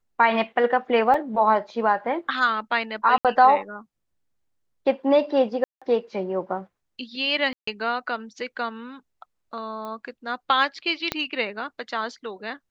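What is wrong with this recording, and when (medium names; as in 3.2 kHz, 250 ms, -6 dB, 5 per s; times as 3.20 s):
1.14 s: dropout 3.1 ms
3.18–3.25 s: dropout 67 ms
5.64–5.82 s: dropout 176 ms
7.53–7.67 s: dropout 144 ms
9.85 s: pop -23 dBFS
11.12 s: pop -9 dBFS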